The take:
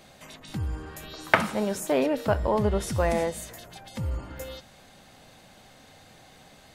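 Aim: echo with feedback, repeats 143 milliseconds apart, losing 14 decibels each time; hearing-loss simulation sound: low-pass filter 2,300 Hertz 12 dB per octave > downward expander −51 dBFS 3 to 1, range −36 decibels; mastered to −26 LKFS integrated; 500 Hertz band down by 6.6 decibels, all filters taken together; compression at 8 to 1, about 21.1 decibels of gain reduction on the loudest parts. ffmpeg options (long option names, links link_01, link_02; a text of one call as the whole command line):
ffmpeg -i in.wav -af "equalizer=frequency=500:width_type=o:gain=-8.5,acompressor=threshold=-39dB:ratio=8,lowpass=2300,aecho=1:1:143|286:0.2|0.0399,agate=range=-36dB:threshold=-51dB:ratio=3,volume=19dB" out.wav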